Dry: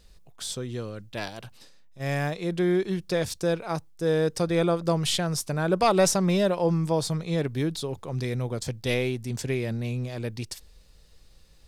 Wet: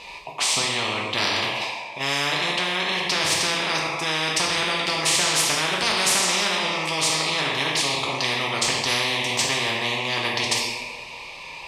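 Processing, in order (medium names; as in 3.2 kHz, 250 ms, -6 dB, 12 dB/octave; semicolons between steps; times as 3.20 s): two resonant band-passes 1.5 kHz, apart 1.3 oct; two-slope reverb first 0.8 s, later 2.2 s, from -19 dB, DRR -2 dB; spectrum-flattening compressor 10:1; trim +9 dB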